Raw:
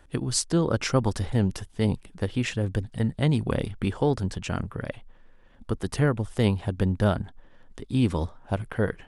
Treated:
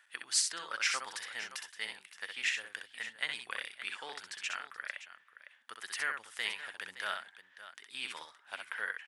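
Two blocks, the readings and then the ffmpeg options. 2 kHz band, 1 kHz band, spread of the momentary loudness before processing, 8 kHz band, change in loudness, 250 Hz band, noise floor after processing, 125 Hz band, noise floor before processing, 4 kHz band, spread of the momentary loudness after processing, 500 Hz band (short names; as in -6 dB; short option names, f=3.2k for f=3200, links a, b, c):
+1.5 dB, -8.5 dB, 8 LU, -2.5 dB, -10.0 dB, -37.0 dB, -66 dBFS, under -40 dB, -54 dBFS, -1.0 dB, 17 LU, -24.5 dB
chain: -af "highpass=f=1.8k:t=q:w=1.9,aecho=1:1:64|569:0.531|0.211,volume=-4dB"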